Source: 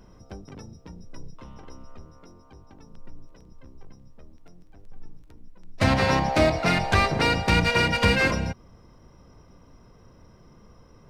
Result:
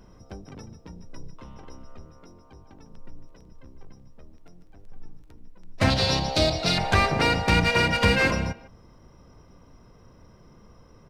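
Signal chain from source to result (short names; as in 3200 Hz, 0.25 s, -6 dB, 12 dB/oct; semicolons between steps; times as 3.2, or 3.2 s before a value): 5.9–6.78 ten-band EQ 250 Hz -5 dB, 1000 Hz -7 dB, 2000 Hz -9 dB, 4000 Hz +12 dB; speakerphone echo 0.15 s, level -14 dB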